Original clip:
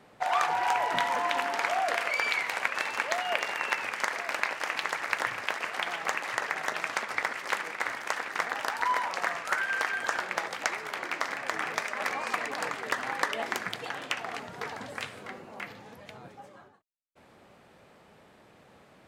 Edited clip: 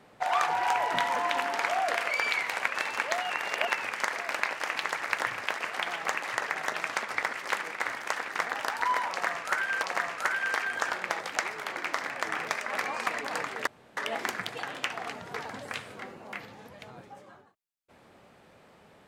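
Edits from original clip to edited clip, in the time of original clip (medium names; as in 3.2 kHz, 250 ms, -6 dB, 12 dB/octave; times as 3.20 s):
3.30–3.67 s: reverse
9.10–9.83 s: loop, 2 plays
12.94–13.24 s: room tone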